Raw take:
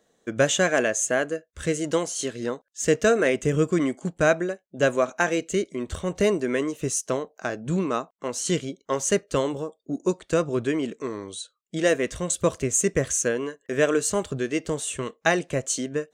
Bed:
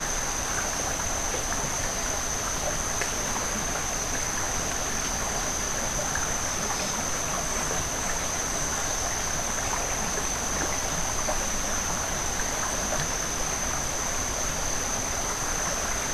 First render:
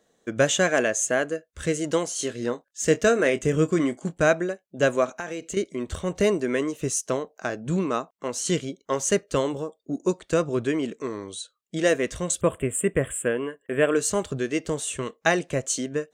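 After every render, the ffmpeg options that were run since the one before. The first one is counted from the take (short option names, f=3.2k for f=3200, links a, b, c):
-filter_complex "[0:a]asettb=1/sr,asplit=3[a][b][c];[a]atrim=end=2.154[d];[b]atrim=start=2.15:end=4.16,asetpts=PTS-STARTPTS,afade=t=in:d=0.004:c=qsin,afade=t=out:st=2.006:d=0.004:c=qsin,asplit=2[e][f];[f]adelay=25,volume=-12dB[g];[e][g]amix=inputs=2:normalize=0,atrim=end_sample=88641[h];[c]atrim=start=4.156[i];[d][h]acrossfade=d=0.004:c1=hsin:c2=qsin[j];[j][i]acrossfade=d=0.004:c1=qsin:c2=hsin,asettb=1/sr,asplit=3[k][l][m];[k]atrim=end=5.114[n];[l]atrim=start=5.11:end=5.57,asetpts=PTS-STARTPTS,afade=t=in:d=0.004:c=qsin,afade=t=out:st=0.456:d=0.004:c=qsin,acompressor=threshold=-29dB:ratio=5:attack=3.2:release=140:knee=1:detection=peak[o];[m]atrim=start=5.566[p];[n][o]acrossfade=d=0.004:c1=hsin:c2=qsin[q];[q][p]acrossfade=d=0.004:c1=qsin:c2=hsin,asettb=1/sr,asplit=3[r][s][t];[r]atrim=end=12.414[u];[s]atrim=start=12.41:end=13.96,asetpts=PTS-STARTPTS,afade=t=in:d=0.004:c=qsin,afade=t=out:st=1.546:d=0.004:c=qsin,asuperstop=centerf=5200:order=12:qfactor=1.2[v];[t]atrim=start=13.956[w];[u][v]acrossfade=d=0.004:c1=hsin:c2=qsin[x];[x][w]acrossfade=d=0.004:c1=qsin:c2=hsin"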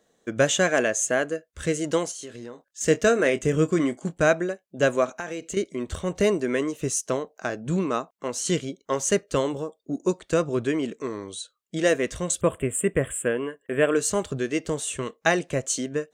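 -filter_complex "[0:a]asettb=1/sr,asplit=3[a][b][c];[a]atrim=end=2.114[d];[b]atrim=start=2.11:end=2.81,asetpts=PTS-STARTPTS,afade=t=in:d=0.004:c=qsin,afade=t=out:st=0.696:d=0.004:c=qsin,acompressor=threshold=-35dB:ratio=6:attack=3.2:release=140:knee=1:detection=peak[e];[c]atrim=start=2.806[f];[d][e]acrossfade=d=0.004:c1=hsin:c2=qsin[g];[g][f]acrossfade=d=0.004:c1=qsin:c2=hsin"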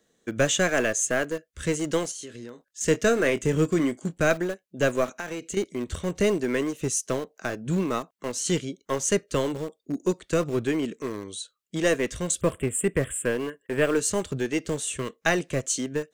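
-filter_complex "[0:a]acrossover=split=580|1000[a][b][c];[b]acrusher=bits=4:dc=4:mix=0:aa=0.000001[d];[a][d][c]amix=inputs=3:normalize=0,asoftclip=type=tanh:threshold=-9dB"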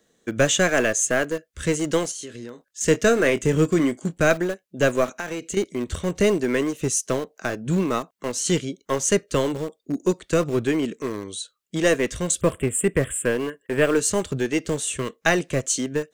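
-af "volume=3.5dB"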